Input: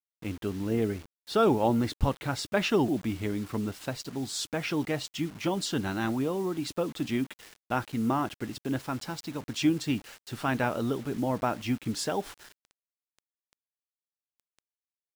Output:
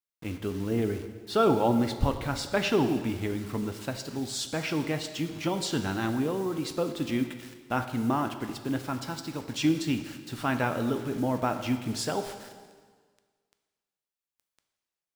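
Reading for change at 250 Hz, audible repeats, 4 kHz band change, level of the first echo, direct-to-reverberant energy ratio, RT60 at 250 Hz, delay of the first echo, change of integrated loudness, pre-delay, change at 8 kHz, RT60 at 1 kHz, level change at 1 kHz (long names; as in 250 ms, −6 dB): +0.5 dB, no echo audible, +1.0 dB, no echo audible, 7.5 dB, 1.6 s, no echo audible, +0.5 dB, 4 ms, +0.5 dB, 1.6 s, +1.0 dB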